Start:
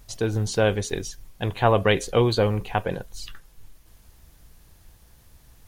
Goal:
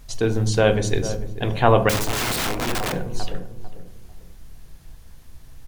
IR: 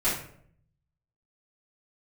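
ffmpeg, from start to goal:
-filter_complex "[0:a]highshelf=f=10k:g=-5.5,bandreject=f=52.7:t=h:w=4,bandreject=f=105.4:t=h:w=4,bandreject=f=158.1:t=h:w=4,bandreject=f=210.8:t=h:w=4,bandreject=f=263.5:t=h:w=4,bandreject=f=316.2:t=h:w=4,bandreject=f=368.9:t=h:w=4,bandreject=f=421.6:t=h:w=4,bandreject=f=474.3:t=h:w=4,bandreject=f=527:t=h:w=4,bandreject=f=579.7:t=h:w=4,bandreject=f=632.4:t=h:w=4,bandreject=f=685.1:t=h:w=4,bandreject=f=737.8:t=h:w=4,bandreject=f=790.5:t=h:w=4,bandreject=f=843.2:t=h:w=4,bandreject=f=895.9:t=h:w=4,bandreject=f=948.6:t=h:w=4,bandreject=f=1.0013k:t=h:w=4,bandreject=f=1.054k:t=h:w=4,bandreject=f=1.1067k:t=h:w=4,bandreject=f=1.1594k:t=h:w=4,asplit=2[a][b];[b]adelay=447,lowpass=f=820:p=1,volume=-11dB,asplit=2[c][d];[d]adelay=447,lowpass=f=820:p=1,volume=0.33,asplit=2[e][f];[f]adelay=447,lowpass=f=820:p=1,volume=0.33,asplit=2[g][h];[h]adelay=447,lowpass=f=820:p=1,volume=0.33[i];[c][e][g][i]amix=inputs=4:normalize=0[j];[a][j]amix=inputs=2:normalize=0,asettb=1/sr,asplit=3[k][l][m];[k]atrim=end=1.894[n];[l]atrim=start=1.89:end=2.93,asetpts=PTS-STARTPTS,afade=t=in:d=0.004:c=qsin,afade=t=out:st=1.036:d=0.004:c=qsin,aeval=exprs='(mod(15*val(0)+1,2)-1)/15':c=same[o];[m]atrim=start=2.926[p];[n][o]acrossfade=d=0.004:c1=hsin:c2=qsin[q];[q][p]acrossfade=d=0.004:c1=qsin:c2=hsin,asplit=2[r][s];[1:a]atrim=start_sample=2205,lowshelf=f=370:g=10[t];[s][t]afir=irnorm=-1:irlink=0,volume=-22dB[u];[r][u]amix=inputs=2:normalize=0,volume=3dB"

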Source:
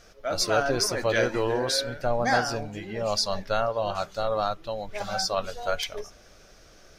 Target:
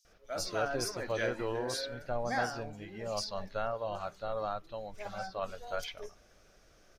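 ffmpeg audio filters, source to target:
-filter_complex "[0:a]asettb=1/sr,asplit=3[a][b][c];[a]atrim=end=3.294[d];[b]atrim=start=3.29:end=5.62,asetpts=PTS-STARTPTS,afade=t=in:d=0.004:c=qsin,afade=t=out:st=2.326:d=0.004:c=qsin,acrossover=split=3100[e][f];[f]acompressor=threshold=-45dB:ratio=4:attack=1:release=60[g];[e][g]amix=inputs=2:normalize=0[h];[c]atrim=start=5.616[i];[d][h]acrossfade=d=0.004:c1=hsin:c2=qsin[j];[j][i]acrossfade=d=0.004:c1=qsin:c2=hsin,acrossover=split=4600[k][l];[k]adelay=50[m];[m][l]amix=inputs=2:normalize=0,volume=-9dB"

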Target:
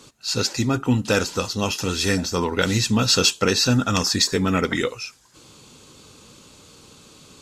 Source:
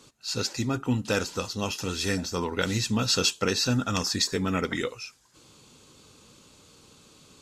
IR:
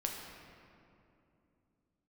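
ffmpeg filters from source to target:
-af "acontrast=69"

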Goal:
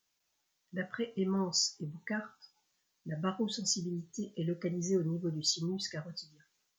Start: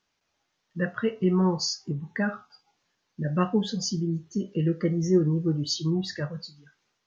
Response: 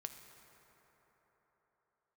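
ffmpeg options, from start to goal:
-af "aemphasis=mode=production:type=75fm,asetrate=45938,aresample=44100,volume=-9dB"

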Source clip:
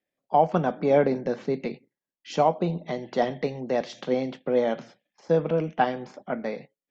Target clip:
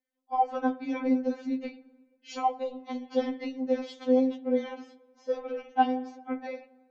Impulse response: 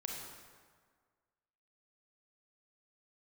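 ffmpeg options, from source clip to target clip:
-filter_complex "[0:a]asplit=2[a][b];[b]lowpass=f=2.4k:p=1[c];[1:a]atrim=start_sample=2205[d];[c][d]afir=irnorm=-1:irlink=0,volume=-14.5dB[e];[a][e]amix=inputs=2:normalize=0,afftfilt=real='re*3.46*eq(mod(b,12),0)':imag='im*3.46*eq(mod(b,12),0)':win_size=2048:overlap=0.75,volume=-3.5dB"

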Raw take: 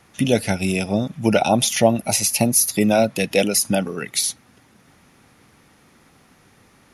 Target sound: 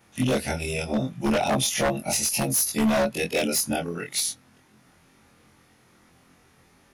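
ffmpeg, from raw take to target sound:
-af "afftfilt=real='re':imag='-im':win_size=2048:overlap=0.75,aeval=exprs='0.158*(abs(mod(val(0)/0.158+3,4)-2)-1)':c=same"

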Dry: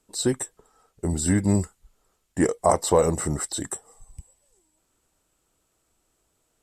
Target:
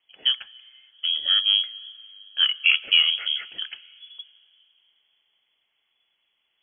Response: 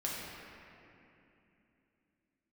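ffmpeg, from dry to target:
-filter_complex "[0:a]asplit=2[a][b];[1:a]atrim=start_sample=2205,lowpass=3.1k[c];[b][c]afir=irnorm=-1:irlink=0,volume=-22.5dB[d];[a][d]amix=inputs=2:normalize=0,lowpass=f=2.9k:t=q:w=0.5098,lowpass=f=2.9k:t=q:w=0.6013,lowpass=f=2.9k:t=q:w=0.9,lowpass=f=2.9k:t=q:w=2.563,afreqshift=-3400"

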